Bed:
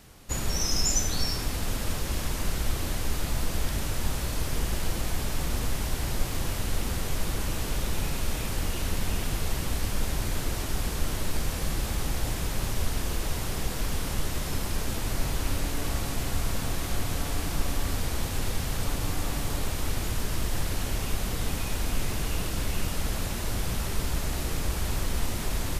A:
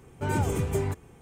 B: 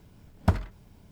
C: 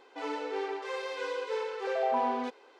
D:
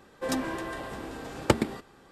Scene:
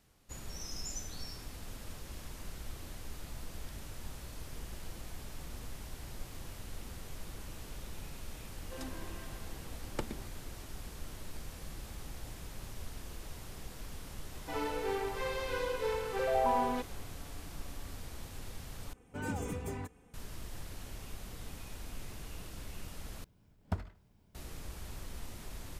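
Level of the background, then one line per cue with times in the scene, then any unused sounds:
bed −16 dB
0:08.49: mix in D −16 dB
0:14.32: mix in C −1 dB
0:18.93: overwrite with A −10 dB + comb filter 4 ms, depth 60%
0:23.24: overwrite with B −12.5 dB + repeating echo 77 ms, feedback 37%, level −20 dB

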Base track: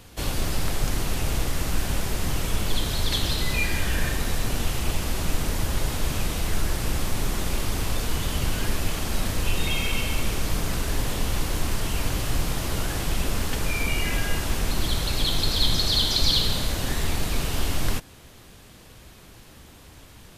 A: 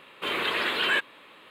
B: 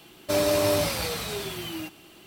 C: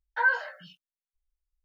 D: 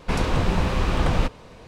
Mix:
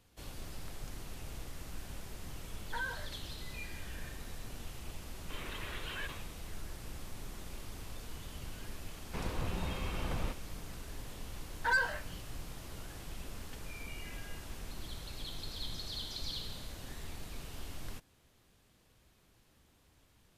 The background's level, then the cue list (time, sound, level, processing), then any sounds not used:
base track −19.5 dB
0:02.56: mix in C −9.5 dB + brickwall limiter −22 dBFS
0:05.07: mix in A −18 dB + level that may fall only so fast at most 86 dB per second
0:09.05: mix in D −16 dB
0:11.48: mix in C −9.5 dB + leveller curve on the samples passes 2
not used: B

